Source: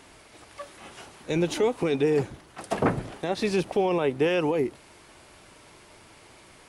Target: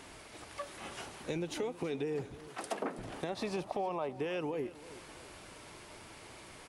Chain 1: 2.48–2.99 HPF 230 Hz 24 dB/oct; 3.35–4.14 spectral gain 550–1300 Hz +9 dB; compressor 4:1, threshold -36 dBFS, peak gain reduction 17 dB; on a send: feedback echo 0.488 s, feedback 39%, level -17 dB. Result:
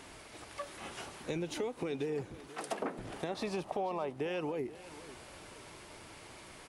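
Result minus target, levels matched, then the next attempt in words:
echo 0.165 s late
2.48–2.99 HPF 230 Hz 24 dB/oct; 3.35–4.14 spectral gain 550–1300 Hz +9 dB; compressor 4:1, threshold -36 dBFS, peak gain reduction 17 dB; on a send: feedback echo 0.323 s, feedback 39%, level -17 dB

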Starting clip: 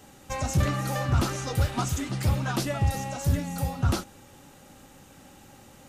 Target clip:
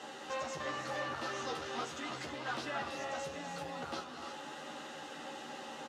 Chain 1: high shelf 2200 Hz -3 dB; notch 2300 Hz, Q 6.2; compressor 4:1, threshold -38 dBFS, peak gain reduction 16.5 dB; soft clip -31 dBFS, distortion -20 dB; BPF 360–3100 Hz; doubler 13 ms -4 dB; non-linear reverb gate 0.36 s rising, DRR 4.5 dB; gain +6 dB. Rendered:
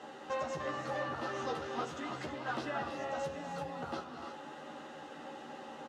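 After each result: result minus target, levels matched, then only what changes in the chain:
4000 Hz band -5.5 dB; soft clip: distortion -8 dB
change: high shelf 2200 Hz +8 dB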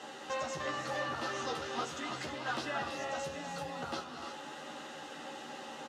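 soft clip: distortion -8 dB
change: soft clip -37.5 dBFS, distortion -11 dB

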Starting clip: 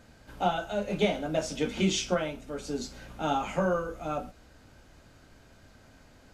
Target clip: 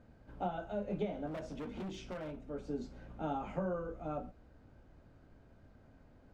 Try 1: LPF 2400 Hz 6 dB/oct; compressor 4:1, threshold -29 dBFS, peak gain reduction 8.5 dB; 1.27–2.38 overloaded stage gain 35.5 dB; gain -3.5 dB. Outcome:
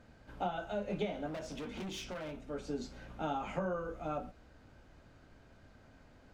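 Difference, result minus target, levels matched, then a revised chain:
2000 Hz band +4.5 dB
LPF 640 Hz 6 dB/oct; compressor 4:1, threshold -29 dBFS, peak gain reduction 7.5 dB; 1.27–2.38 overloaded stage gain 35.5 dB; gain -3.5 dB

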